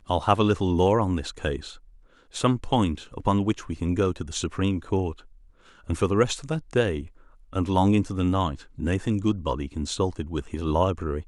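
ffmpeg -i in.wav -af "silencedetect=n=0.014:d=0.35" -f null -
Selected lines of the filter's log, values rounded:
silence_start: 1.76
silence_end: 2.34 | silence_duration: 0.58
silence_start: 5.20
silence_end: 5.89 | silence_duration: 0.70
silence_start: 7.07
silence_end: 7.53 | silence_duration: 0.46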